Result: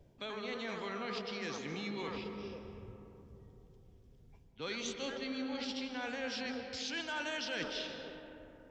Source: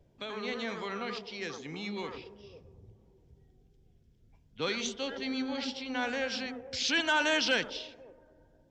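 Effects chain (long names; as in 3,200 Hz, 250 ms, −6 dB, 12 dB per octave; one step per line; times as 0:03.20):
reversed playback
downward compressor 5 to 1, threshold −40 dBFS, peak gain reduction 15 dB
reversed playback
comb and all-pass reverb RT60 3.3 s, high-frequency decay 0.35×, pre-delay 115 ms, DRR 6.5 dB
level +2 dB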